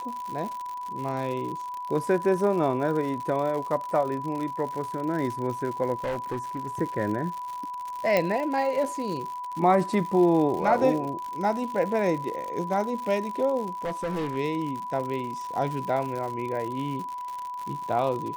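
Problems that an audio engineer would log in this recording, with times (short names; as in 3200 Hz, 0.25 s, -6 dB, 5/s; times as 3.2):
crackle 120/s -32 dBFS
tone 990 Hz -32 dBFS
6–6.68 clipped -25.5 dBFS
8.17 pop -10 dBFS
13.84–14.37 clipped -25.5 dBFS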